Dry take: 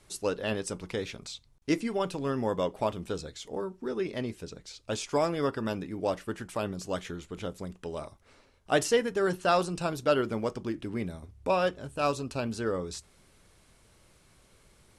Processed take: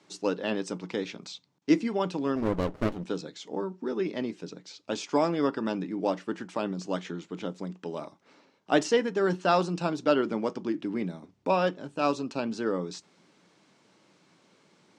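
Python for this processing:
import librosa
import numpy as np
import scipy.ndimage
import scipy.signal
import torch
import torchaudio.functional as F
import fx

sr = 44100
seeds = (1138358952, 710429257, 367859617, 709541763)

y = fx.cabinet(x, sr, low_hz=160.0, low_slope=24, high_hz=6700.0, hz=(180.0, 300.0, 890.0), db=(5, 7, 4))
y = fx.running_max(y, sr, window=33, at=(2.35, 3.03), fade=0.02)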